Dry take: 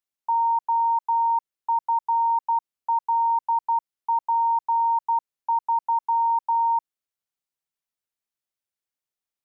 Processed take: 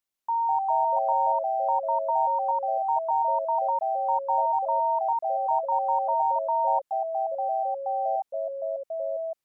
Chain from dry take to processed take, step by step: limiter -24 dBFS, peak gain reduction 6 dB; echoes that change speed 0.148 s, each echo -3 st, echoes 3; gain +2 dB

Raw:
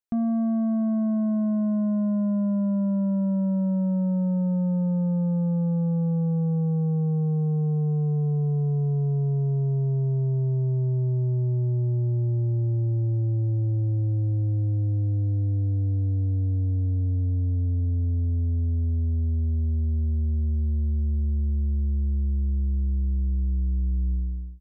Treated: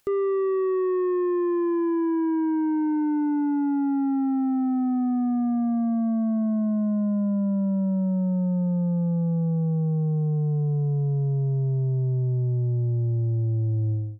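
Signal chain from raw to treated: upward compressor, threshold -45 dBFS; speed mistake 45 rpm record played at 78 rpm

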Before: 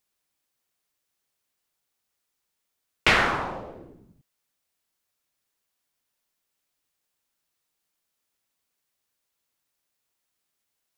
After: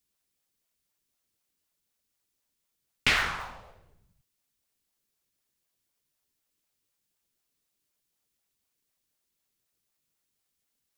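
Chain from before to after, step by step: passive tone stack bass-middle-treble 10-0-10; in parallel at -12 dB: decimation with a swept rate 37×, swing 160% 4 Hz

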